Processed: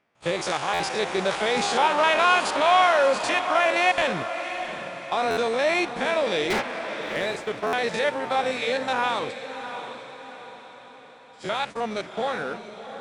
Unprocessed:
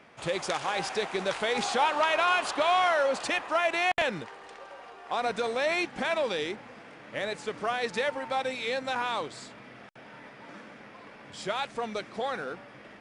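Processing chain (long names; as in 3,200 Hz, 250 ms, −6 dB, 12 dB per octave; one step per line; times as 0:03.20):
spectrum averaged block by block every 50 ms
noise gate −40 dBFS, range −22 dB
0:06.50–0:07.16: mid-hump overdrive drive 39 dB, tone 4,200 Hz, clips at −23 dBFS
on a send: feedback delay with all-pass diffusion 698 ms, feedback 47%, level −10 dB
on the sum: buffer that repeats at 0:00.73/0:05.30/0:07.66, samples 512, times 5
level +6.5 dB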